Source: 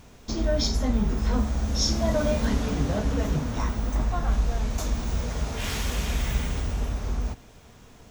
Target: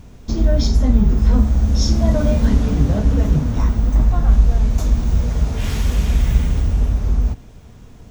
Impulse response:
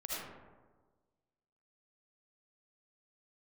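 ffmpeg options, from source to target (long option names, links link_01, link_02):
-af "lowshelf=frequency=320:gain=12"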